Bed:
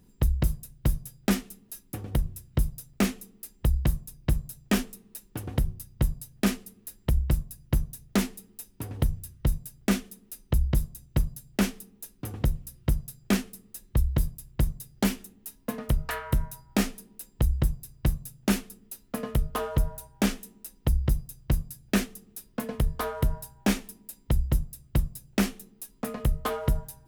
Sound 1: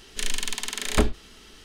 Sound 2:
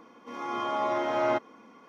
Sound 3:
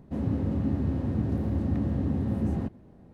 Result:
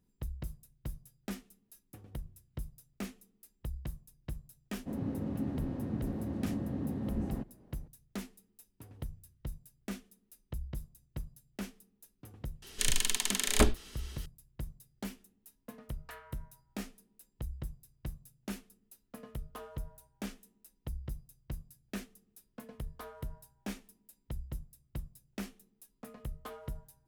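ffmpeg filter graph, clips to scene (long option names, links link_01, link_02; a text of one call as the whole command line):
ffmpeg -i bed.wav -i cue0.wav -i cue1.wav -i cue2.wav -filter_complex "[0:a]volume=-16dB[link_01];[3:a]equalizer=frequency=79:width=1.5:gain=-9.5[link_02];[1:a]highshelf=frequency=7700:gain=9.5[link_03];[link_02]atrim=end=3.13,asetpts=PTS-STARTPTS,volume=-6dB,afade=type=in:duration=0.004:curve=hsin,afade=type=out:start_time=3.126:duration=0.004:curve=hsin,adelay=4750[link_04];[link_03]atrim=end=1.64,asetpts=PTS-STARTPTS,volume=-4dB,afade=type=in:duration=0.004:curve=hsin,afade=type=out:start_time=1.636:duration=0.004:curve=hsin,adelay=12620[link_05];[link_01][link_04][link_05]amix=inputs=3:normalize=0" out.wav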